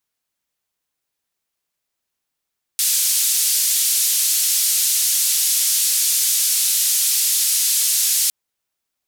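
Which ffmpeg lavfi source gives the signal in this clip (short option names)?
-f lavfi -i "anoisesrc=c=white:d=5.51:r=44100:seed=1,highpass=f=4600,lowpass=f=13000,volume=-8.8dB"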